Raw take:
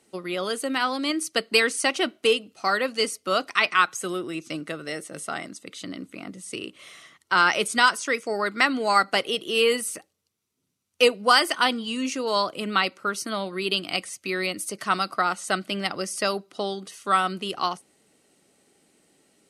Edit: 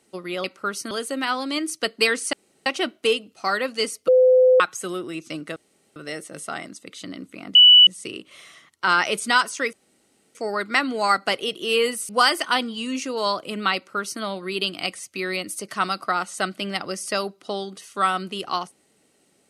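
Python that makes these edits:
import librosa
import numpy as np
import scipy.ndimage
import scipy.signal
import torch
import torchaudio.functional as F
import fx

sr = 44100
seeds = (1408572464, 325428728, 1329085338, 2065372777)

y = fx.edit(x, sr, fx.insert_room_tone(at_s=1.86, length_s=0.33),
    fx.bleep(start_s=3.28, length_s=0.52, hz=510.0, db=-11.0),
    fx.insert_room_tone(at_s=4.76, length_s=0.4),
    fx.insert_tone(at_s=6.35, length_s=0.32, hz=2960.0, db=-7.0),
    fx.insert_room_tone(at_s=8.21, length_s=0.62),
    fx.cut(start_s=9.95, length_s=1.24),
    fx.duplicate(start_s=12.85, length_s=0.47, to_s=0.44), tone=tone)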